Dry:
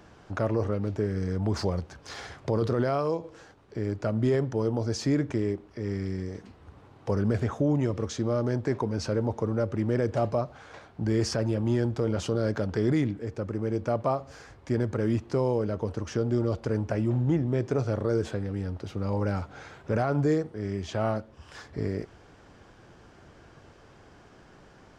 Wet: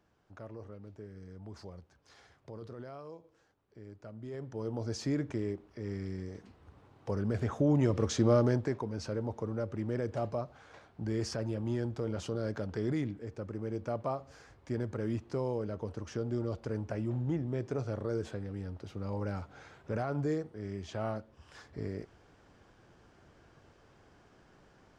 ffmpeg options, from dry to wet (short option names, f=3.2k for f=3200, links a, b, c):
-af "volume=2.5dB,afade=t=in:st=4.28:d=0.6:silence=0.237137,afade=t=in:st=7.29:d=1.04:silence=0.334965,afade=t=out:st=8.33:d=0.43:silence=0.298538"